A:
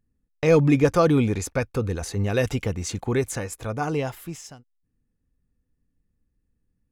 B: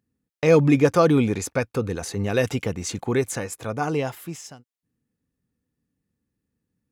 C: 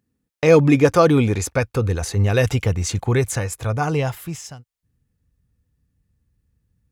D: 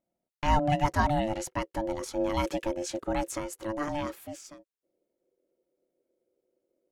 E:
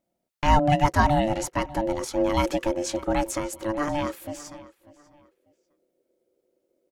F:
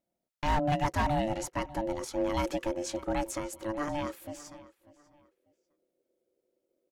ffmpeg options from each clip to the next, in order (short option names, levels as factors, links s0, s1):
-af "highpass=120,volume=1.19"
-af "asubboost=boost=10:cutoff=84,volume=1.58"
-af "aeval=exprs='val(0)*sin(2*PI*440*n/s)':c=same,volume=0.376"
-filter_complex "[0:a]asplit=2[s0][s1];[s1]adelay=594,lowpass=f=4900:p=1,volume=0.112,asplit=2[s2][s3];[s3]adelay=594,lowpass=f=4900:p=1,volume=0.29[s4];[s0][s2][s4]amix=inputs=3:normalize=0,volume=1.88"
-af "volume=5.62,asoftclip=hard,volume=0.178,volume=0.473"